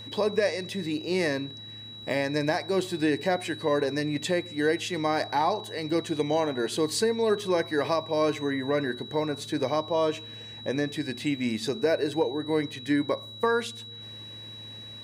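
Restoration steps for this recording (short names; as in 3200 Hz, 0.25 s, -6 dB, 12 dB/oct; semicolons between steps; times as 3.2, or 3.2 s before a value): de-click; de-hum 109.3 Hz, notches 3; notch 3900 Hz, Q 30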